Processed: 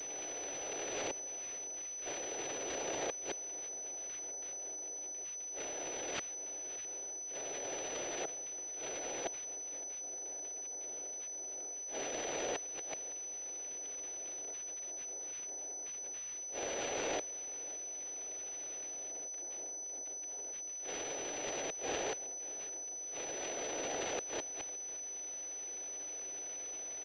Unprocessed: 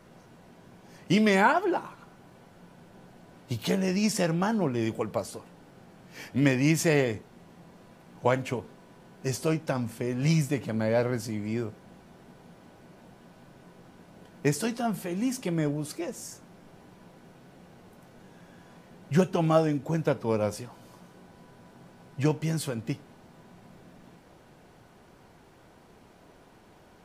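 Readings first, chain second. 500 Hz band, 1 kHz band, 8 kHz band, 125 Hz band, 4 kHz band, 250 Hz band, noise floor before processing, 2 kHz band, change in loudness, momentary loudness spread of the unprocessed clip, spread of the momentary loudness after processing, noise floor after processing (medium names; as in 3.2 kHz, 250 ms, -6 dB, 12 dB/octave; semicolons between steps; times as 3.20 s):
-12.5 dB, -12.5 dB, +7.5 dB, -32.5 dB, -6.0 dB, -22.5 dB, -56 dBFS, -11.5 dB, -12.0 dB, 13 LU, 3 LU, -44 dBFS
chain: recorder AGC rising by 7 dB/s; comb 1.9 ms, depth 87%; noise-vocoded speech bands 2; compression 10:1, threshold -29 dBFS, peak gain reduction 17.5 dB; transient shaper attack -10 dB, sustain +10 dB; inverted gate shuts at -30 dBFS, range -26 dB; high-pass 220 Hz 12 dB/octave; tilt EQ +2 dB/octave; static phaser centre 460 Hz, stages 4; on a send: feedback delay 563 ms, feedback 37%, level -18.5 dB; on the sum: class-D stage that switches slowly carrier 6 kHz; trim +9 dB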